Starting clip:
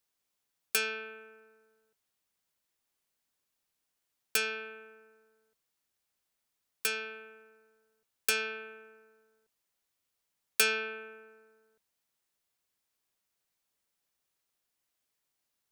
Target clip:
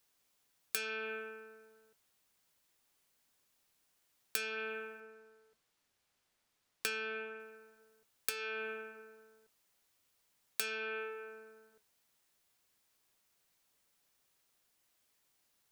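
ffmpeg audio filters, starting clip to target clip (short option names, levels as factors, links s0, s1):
-filter_complex "[0:a]asettb=1/sr,asplit=3[s0][s1][s2];[s0]atrim=end=5.004[s3];[s1]atrim=start=5:end=7.4,asetpts=PTS-STARTPTS,afade=t=in:d=0.004:c=qsin,afade=t=out:st=2.396:d=0.004:c=qsin,highshelf=f=8000:g=-10[s4];[s2]atrim=start=7.396[s5];[s3][s4]acrossfade=d=0.004:c1=hsin:c2=qsin[s6];[s6][s5]acrossfade=d=0.004:c1=qsin:c2=hsin,acompressor=threshold=0.01:ratio=16,flanger=delay=6.8:depth=3:regen=-75:speed=0.36:shape=sinusoidal,volume=3.55"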